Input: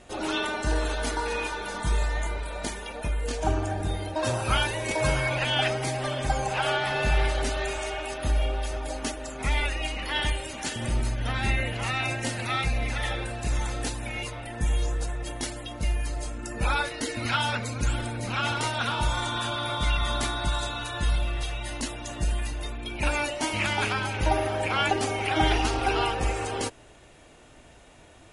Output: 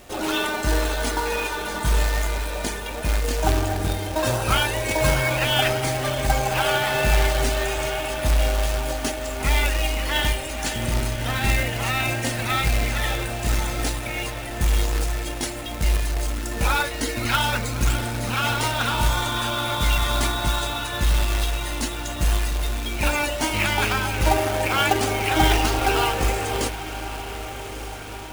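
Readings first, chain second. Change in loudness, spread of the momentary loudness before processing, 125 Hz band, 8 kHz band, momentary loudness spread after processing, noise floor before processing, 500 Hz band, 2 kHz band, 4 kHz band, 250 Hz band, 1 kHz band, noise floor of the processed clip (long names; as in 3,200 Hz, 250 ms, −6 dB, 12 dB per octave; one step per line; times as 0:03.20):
+5.0 dB, 8 LU, +5.0 dB, +7.0 dB, 7 LU, −51 dBFS, +5.0 dB, +4.5 dB, +5.0 dB, +4.5 dB, +4.5 dB, −32 dBFS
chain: feedback delay with all-pass diffusion 1,235 ms, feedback 59%, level −12.5 dB
log-companded quantiser 4 bits
level +4 dB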